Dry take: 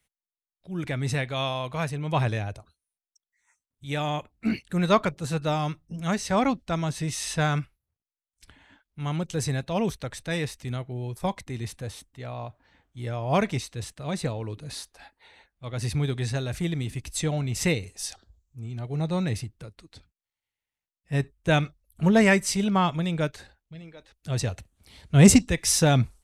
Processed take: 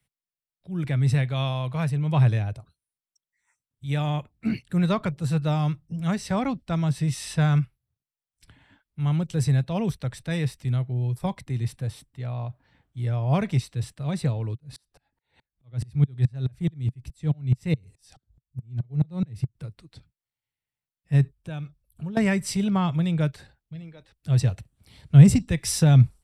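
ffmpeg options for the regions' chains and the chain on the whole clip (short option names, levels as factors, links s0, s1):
-filter_complex "[0:a]asettb=1/sr,asplit=3[s0][s1][s2];[s0]atrim=end=14.554[s3];[s1]atrim=start=14.55:end=19.55,asetpts=PTS-STARTPTS,afade=t=in:d=0.004:c=qsin,afade=t=out:st=4.996:d=0.004:c=qsin,lowshelf=f=330:g=6.5,aeval=exprs='val(0)*pow(10,-39*if(lt(mod(-4.7*n/s,1),2*abs(-4.7)/1000),1-mod(-4.7*n/s,1)/(2*abs(-4.7)/1000),(mod(-4.7*n/s,1)-2*abs(-4.7)/1000)/(1-2*abs(-4.7)/1000))/20)':c=same[s4];[s2]atrim=start=19.546[s5];[s3][s4]acrossfade=d=0.004:c1=hsin:c2=qsin[s6];[s6][s5]acrossfade=d=0.004:c1=qsin:c2=hsin,asettb=1/sr,asplit=3[s7][s8][s9];[s7]atrim=end=21.344[s10];[s8]atrim=start=21.34:end=22.17,asetpts=PTS-STARTPTS,afade=t=in:d=0.004:c=qsin,afade=t=out:st=0.826:d=0.004:c=qsin,acompressor=threshold=0.00501:ratio=2:attack=3.2:release=140:knee=1:detection=peak,asuperstop=centerf=2000:order=4:qfactor=7.9[s11];[s9]atrim=start=22.166[s12];[s10][s11]acrossfade=d=0.004:c1=hsin:c2=qsin[s13];[s13][s12]acrossfade=d=0.004:c1=qsin:c2=hsin,equalizer=f=130:w=1.4:g=11.5,bandreject=f=6500:w=8.2,acrossover=split=180[s14][s15];[s15]acompressor=threshold=0.112:ratio=3[s16];[s14][s16]amix=inputs=2:normalize=0,volume=0.708"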